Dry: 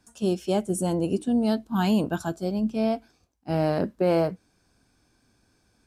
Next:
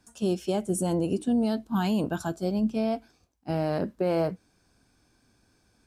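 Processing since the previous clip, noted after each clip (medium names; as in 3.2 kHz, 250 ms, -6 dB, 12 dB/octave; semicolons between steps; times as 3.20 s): peak limiter -17 dBFS, peak gain reduction 4.5 dB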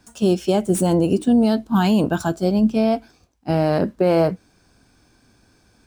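median filter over 3 samples; trim +9 dB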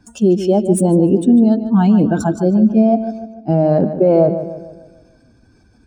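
spectral contrast enhancement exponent 1.6; on a send: filtered feedback delay 148 ms, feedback 47%, low-pass 3.9 kHz, level -10.5 dB; on the sum: trim +5 dB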